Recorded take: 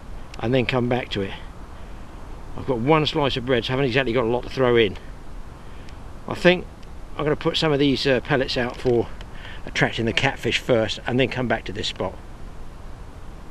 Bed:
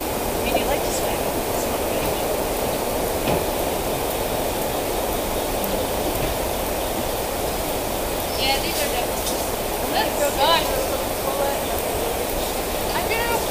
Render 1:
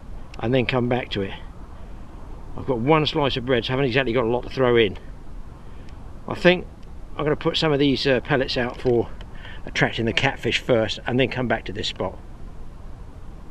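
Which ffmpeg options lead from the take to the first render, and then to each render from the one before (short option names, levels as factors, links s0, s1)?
-af "afftdn=nr=6:nf=-40"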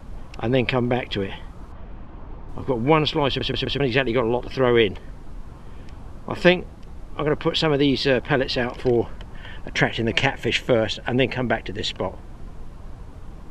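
-filter_complex "[0:a]asettb=1/sr,asplit=3[s0][s1][s2];[s0]atrim=end=1.724[s3];[s1]atrim=start=1.72:end=2.49,asetpts=PTS-STARTPTS,afade=t=in:d=0.004:c=qsin,afade=t=out:st=0.766:d=0.004:c=qsin,lowpass=3100[s4];[s2]atrim=start=2.486[s5];[s3][s4]acrossfade=d=0.004:c1=hsin:c2=qsin[s6];[s6][s5]acrossfade=d=0.004:c1=qsin:c2=hsin,asplit=5[s7][s8][s9][s10][s11];[s7]atrim=end=3.412[s12];[s8]atrim=start=3.278:end=3.412[s13];[s9]atrim=start=3.278:end=3.412[s14];[s10]atrim=start=3.278:end=3.412[s15];[s11]atrim=start=3.798[s16];[s12][s13]acrossfade=d=0.004:c1=hsin:c2=hsin[s17];[s17][s14]acrossfade=d=0.004:c1=hsin:c2=hsin[s18];[s18][s15]acrossfade=d=0.004:c1=hsin:c2=hsin[s19];[s19][s16]acrossfade=d=0.004:c1=hsin:c2=hsin"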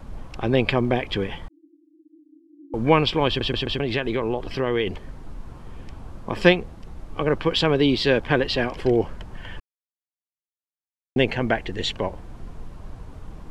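-filter_complex "[0:a]asettb=1/sr,asplit=3[s0][s1][s2];[s0]atrim=end=1.484[s3];[s1]atrim=start=1.48:end=2.74,asetpts=PTS-STARTPTS,afade=t=in:d=0.004:c=qsin,afade=t=out:st=1.256:d=0.004:c=qsin,asuperpass=centerf=310:order=20:qfactor=4.2[s4];[s2]atrim=start=2.736[s5];[s3][s4]acrossfade=d=0.004:c1=hsin:c2=qsin[s6];[s6][s5]acrossfade=d=0.004:c1=qsin:c2=hsin,asettb=1/sr,asplit=3[s7][s8][s9];[s7]atrim=end=3.544[s10];[s8]atrim=start=3.54:end=4.87,asetpts=PTS-STARTPTS,afade=t=in:d=0.004:c=qsin,afade=t=out:st=1.326:d=0.004:c=qsin,acompressor=threshold=0.0891:ratio=2.5:attack=3.2:release=140:knee=1:detection=peak[s11];[s9]atrim=start=4.866[s12];[s10][s11]acrossfade=d=0.004:c1=hsin:c2=qsin[s13];[s13][s12]acrossfade=d=0.004:c1=qsin:c2=hsin,asplit=3[s14][s15][s16];[s14]atrim=end=9.6,asetpts=PTS-STARTPTS,afade=t=out:st=9.596:d=0.004:c=hsin[s17];[s15]atrim=start=9.6:end=11.16,asetpts=PTS-STARTPTS,volume=0[s18];[s16]atrim=start=11.16,asetpts=PTS-STARTPTS,afade=t=in:d=0.004:c=hsin[s19];[s17][s18][s19]concat=n=3:v=0:a=1"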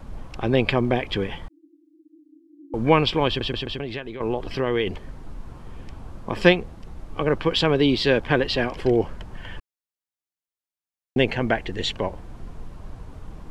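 -filter_complex "[0:a]asplit=2[s0][s1];[s0]atrim=end=4.2,asetpts=PTS-STARTPTS,afade=t=out:st=3.18:d=1.02:silence=0.266073[s2];[s1]atrim=start=4.2,asetpts=PTS-STARTPTS,afade=t=in:d=0.004:c=hsin:silence=0.266073[s3];[s2][s3]concat=n=2:v=0:a=1"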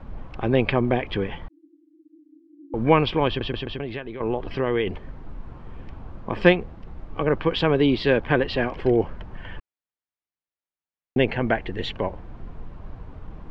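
-af "lowpass=2800"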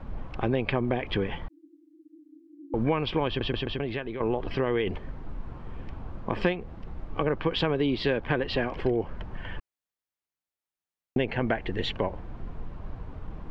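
-af "acompressor=threshold=0.0794:ratio=6"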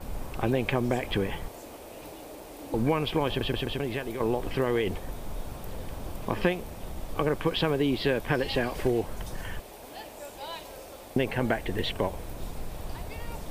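-filter_complex "[1:a]volume=0.0841[s0];[0:a][s0]amix=inputs=2:normalize=0"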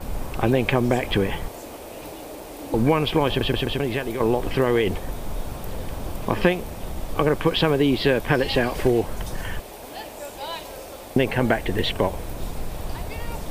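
-af "volume=2.11"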